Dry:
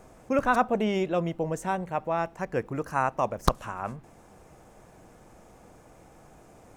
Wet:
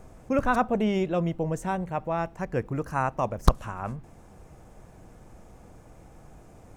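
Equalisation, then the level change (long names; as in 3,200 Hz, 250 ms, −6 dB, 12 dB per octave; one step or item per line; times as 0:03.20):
low-shelf EQ 160 Hz +11 dB
−1.5 dB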